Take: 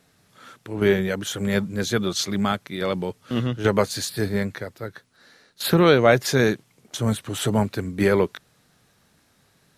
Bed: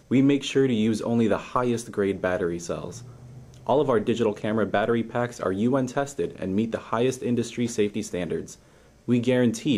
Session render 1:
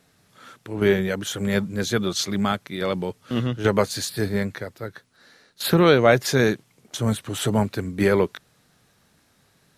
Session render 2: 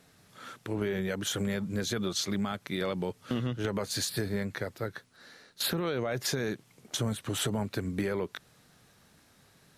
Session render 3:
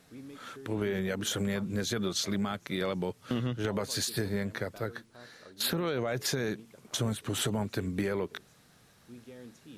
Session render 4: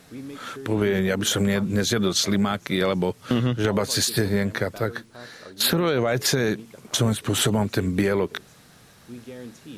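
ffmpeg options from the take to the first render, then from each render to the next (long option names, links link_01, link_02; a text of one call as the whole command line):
ffmpeg -i in.wav -af anull out.wav
ffmpeg -i in.wav -af "alimiter=limit=-13.5dB:level=0:latency=1:release=42,acompressor=threshold=-28dB:ratio=6" out.wav
ffmpeg -i in.wav -i bed.wav -filter_complex "[1:a]volume=-27.5dB[link_01];[0:a][link_01]amix=inputs=2:normalize=0" out.wav
ffmpeg -i in.wav -af "volume=9.5dB" out.wav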